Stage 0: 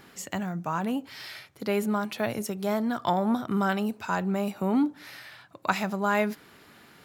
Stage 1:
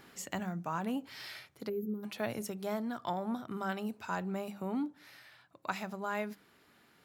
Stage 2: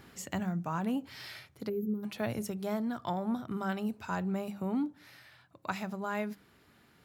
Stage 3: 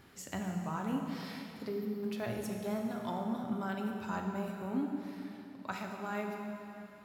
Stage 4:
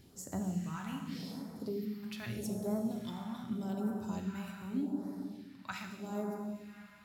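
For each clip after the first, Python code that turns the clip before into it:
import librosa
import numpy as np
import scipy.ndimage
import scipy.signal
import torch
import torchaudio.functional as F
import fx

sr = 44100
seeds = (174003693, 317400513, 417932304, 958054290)

y1 = fx.rider(x, sr, range_db=4, speed_s=0.5)
y1 = fx.spec_box(y1, sr, start_s=1.69, length_s=0.35, low_hz=580.0, high_hz=12000.0, gain_db=-28)
y1 = fx.hum_notches(y1, sr, base_hz=50, count=4)
y1 = y1 * librosa.db_to_amplitude(-8.5)
y2 = fx.peak_eq(y1, sr, hz=61.0, db=11.0, octaves=2.9)
y3 = fx.rev_plate(y2, sr, seeds[0], rt60_s=3.2, hf_ratio=0.8, predelay_ms=0, drr_db=1.5)
y3 = y3 * librosa.db_to_amplitude(-4.5)
y4 = fx.phaser_stages(y3, sr, stages=2, low_hz=430.0, high_hz=2600.0, hz=0.83, feedback_pct=30)
y4 = y4 * librosa.db_to_amplitude(1.0)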